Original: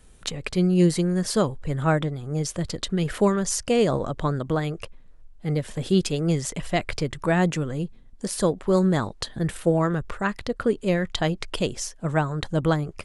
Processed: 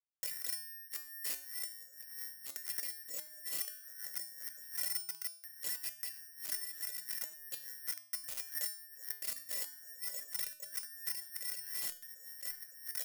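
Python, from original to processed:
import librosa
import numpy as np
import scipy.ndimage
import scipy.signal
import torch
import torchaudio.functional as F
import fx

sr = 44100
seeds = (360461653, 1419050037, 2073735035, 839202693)

y = fx.band_invert(x, sr, width_hz=2000)
y = fx.vowel_filter(y, sr, vowel='e')
y = fx.low_shelf(y, sr, hz=470.0, db=9.0)
y = fx.quant_dither(y, sr, seeds[0], bits=8, dither='none')
y = (np.kron(y[::6], np.eye(6)[0]) * 6)[:len(y)]
y = fx.high_shelf(y, sr, hz=4900.0, db=8.0)
y = fx.over_compress(y, sr, threshold_db=-33.0, ratio=-1.0)
y = fx.comb_fb(y, sr, f0_hz=300.0, decay_s=0.48, harmonics='all', damping=0.0, mix_pct=80)
y = fx.buffer_crackle(y, sr, first_s=0.35, period_s=0.58, block=512, kind='repeat')
y = y * 10.0 ** (-2.0 / 20.0)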